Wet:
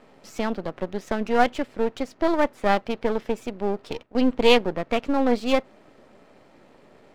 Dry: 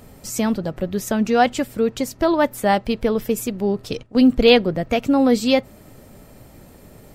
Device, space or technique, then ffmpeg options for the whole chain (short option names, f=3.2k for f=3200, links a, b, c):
crystal radio: -af "highpass=290,lowpass=3.4k,aeval=exprs='if(lt(val(0),0),0.251*val(0),val(0))':c=same"